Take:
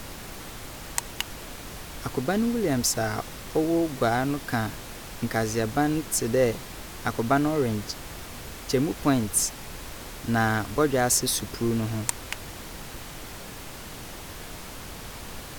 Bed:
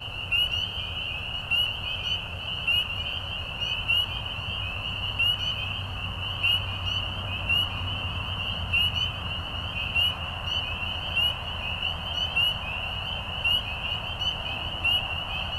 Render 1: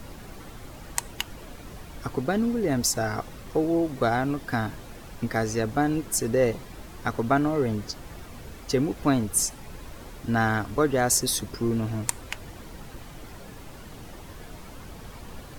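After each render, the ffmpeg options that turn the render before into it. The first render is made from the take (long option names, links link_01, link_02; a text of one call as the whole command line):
ffmpeg -i in.wav -af "afftdn=noise_reduction=9:noise_floor=-40" out.wav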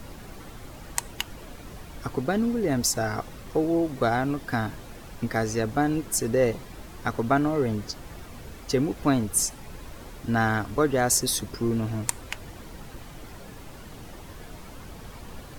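ffmpeg -i in.wav -af anull out.wav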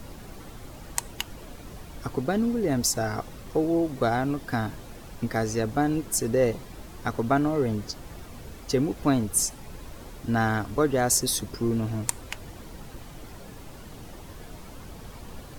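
ffmpeg -i in.wav -af "equalizer=frequency=1800:width_type=o:width=1.7:gain=-2.5" out.wav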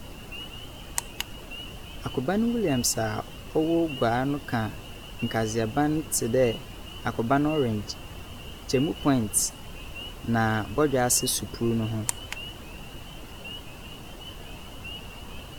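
ffmpeg -i in.wav -i bed.wav -filter_complex "[1:a]volume=-16dB[link_01];[0:a][link_01]amix=inputs=2:normalize=0" out.wav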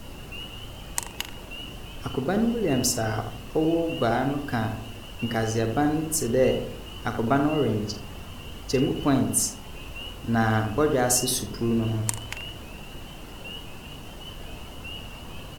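ffmpeg -i in.wav -filter_complex "[0:a]asplit=2[link_01][link_02];[link_02]adelay=44,volume=-11dB[link_03];[link_01][link_03]amix=inputs=2:normalize=0,asplit=2[link_04][link_05];[link_05]adelay=82,lowpass=frequency=1200:poles=1,volume=-6dB,asplit=2[link_06][link_07];[link_07]adelay=82,lowpass=frequency=1200:poles=1,volume=0.48,asplit=2[link_08][link_09];[link_09]adelay=82,lowpass=frequency=1200:poles=1,volume=0.48,asplit=2[link_10][link_11];[link_11]adelay=82,lowpass=frequency=1200:poles=1,volume=0.48,asplit=2[link_12][link_13];[link_13]adelay=82,lowpass=frequency=1200:poles=1,volume=0.48,asplit=2[link_14][link_15];[link_15]adelay=82,lowpass=frequency=1200:poles=1,volume=0.48[link_16];[link_04][link_06][link_08][link_10][link_12][link_14][link_16]amix=inputs=7:normalize=0" out.wav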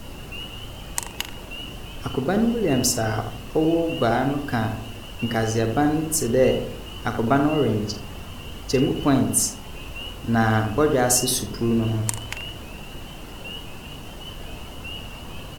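ffmpeg -i in.wav -af "volume=3dB,alimiter=limit=-3dB:level=0:latency=1" out.wav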